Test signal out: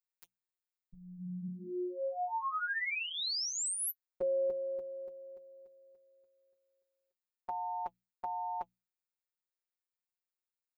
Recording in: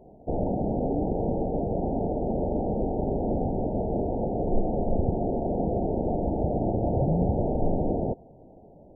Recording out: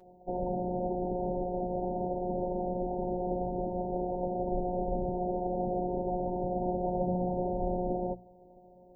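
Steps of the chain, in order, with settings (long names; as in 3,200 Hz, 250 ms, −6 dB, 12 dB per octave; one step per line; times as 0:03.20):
mains-hum notches 60/120/180/240 Hz
phases set to zero 180 Hz
notch comb filter 170 Hz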